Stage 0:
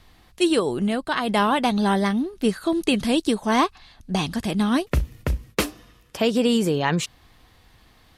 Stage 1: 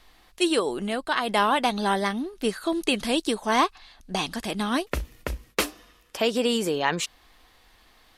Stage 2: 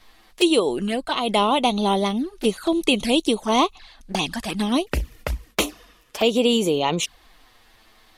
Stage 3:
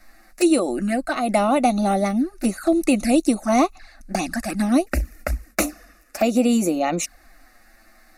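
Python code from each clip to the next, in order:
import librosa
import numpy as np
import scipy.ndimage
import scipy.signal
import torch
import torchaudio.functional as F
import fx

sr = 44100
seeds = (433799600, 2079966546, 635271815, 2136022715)

y1 = fx.peak_eq(x, sr, hz=110.0, db=-15.0, octaves=2.0)
y2 = fx.env_flanger(y1, sr, rest_ms=10.1, full_db=-23.0)
y2 = y2 * librosa.db_to_amplitude(6.0)
y3 = fx.fixed_phaser(y2, sr, hz=650.0, stages=8)
y3 = y3 * librosa.db_to_amplitude(4.5)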